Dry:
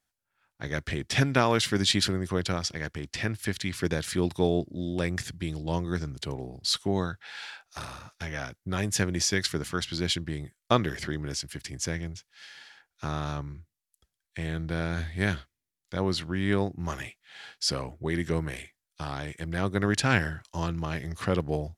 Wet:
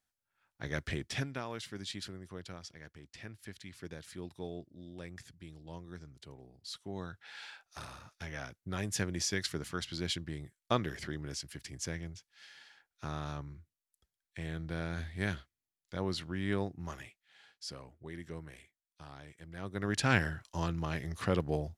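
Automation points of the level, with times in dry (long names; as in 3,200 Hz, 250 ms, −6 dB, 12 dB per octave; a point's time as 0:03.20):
0:00.96 −5 dB
0:01.40 −17.5 dB
0:06.79 −17.5 dB
0:07.28 −7.5 dB
0:16.70 −7.5 dB
0:17.45 −16 dB
0:19.53 −16 dB
0:20.08 −4 dB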